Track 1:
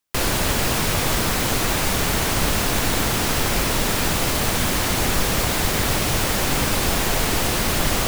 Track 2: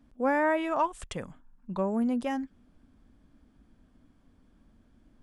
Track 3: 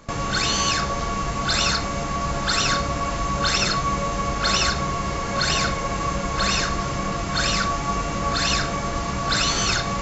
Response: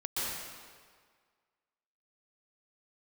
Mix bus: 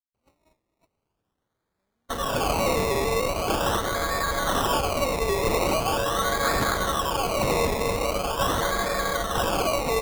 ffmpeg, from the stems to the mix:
-filter_complex "[0:a]highpass=46,equalizer=f=710:w=3.9:g=-8,aphaser=in_gain=1:out_gain=1:delay=3.8:decay=0.25:speed=0.77:type=triangular,volume=-15.5dB[a];[1:a]volume=-11dB,asplit=2[b][c];[c]volume=-15.5dB[d];[2:a]equalizer=f=125:t=o:w=1:g=-12,equalizer=f=250:t=o:w=1:g=-8,equalizer=f=500:t=o:w=1:g=8,equalizer=f=1k:t=o:w=1:g=3,asoftclip=type=tanh:threshold=-14.5dB,adelay=2000,volume=-3dB,asplit=2[e][f];[f]volume=-6.5dB[g];[d][g]amix=inputs=2:normalize=0,aecho=0:1:260|520|780|1040|1300|1560|1820|2080:1|0.52|0.27|0.141|0.0731|0.038|0.0198|0.0103[h];[a][b][e][h]amix=inputs=4:normalize=0,agate=range=-43dB:threshold=-28dB:ratio=16:detection=peak,acrusher=samples=22:mix=1:aa=0.000001:lfo=1:lforange=13.2:lforate=0.42"

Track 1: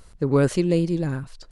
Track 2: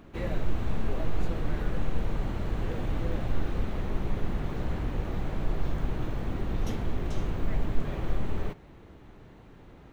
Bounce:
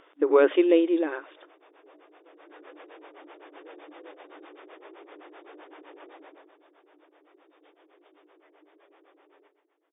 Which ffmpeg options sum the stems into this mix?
-filter_complex "[0:a]volume=3dB[a];[1:a]acrossover=split=410[b][c];[b]aeval=exprs='val(0)*(1-1/2+1/2*cos(2*PI*7.8*n/s))':c=same[d];[c]aeval=exprs='val(0)*(1-1/2-1/2*cos(2*PI*7.8*n/s))':c=same[e];[d][e]amix=inputs=2:normalize=0,adelay=950,volume=-3.5dB,afade=t=in:st=2.28:d=0.46:silence=0.375837,afade=t=out:st=6.14:d=0.39:silence=0.251189,asplit=2[f][g];[g]volume=-9.5dB,aecho=0:1:126|252|378|504|630:1|0.39|0.152|0.0593|0.0231[h];[a][f][h]amix=inputs=3:normalize=0,afftfilt=real='re*between(b*sr/4096,280,3700)':imag='im*between(b*sr/4096,280,3700)':win_size=4096:overlap=0.75"

